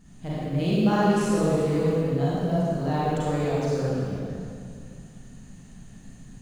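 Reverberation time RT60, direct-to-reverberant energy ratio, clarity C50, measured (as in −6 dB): 2.3 s, −10.0 dB, −7.0 dB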